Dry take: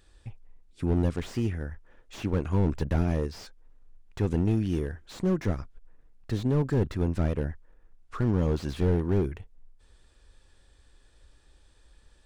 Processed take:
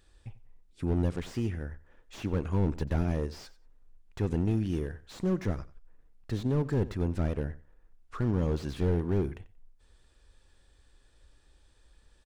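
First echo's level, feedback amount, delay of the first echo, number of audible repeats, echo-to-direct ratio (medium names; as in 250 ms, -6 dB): -18.0 dB, 17%, 91 ms, 2, -18.0 dB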